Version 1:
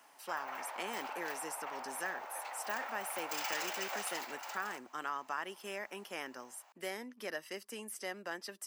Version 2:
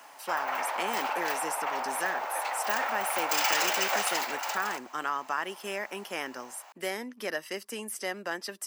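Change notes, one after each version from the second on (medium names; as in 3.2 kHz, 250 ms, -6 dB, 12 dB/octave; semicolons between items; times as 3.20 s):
speech +7.5 dB; background +12.0 dB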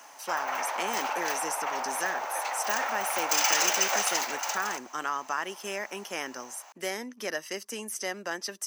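master: add peaking EQ 6.1 kHz +10.5 dB 0.31 oct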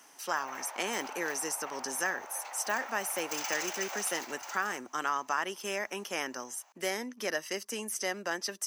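background -12.0 dB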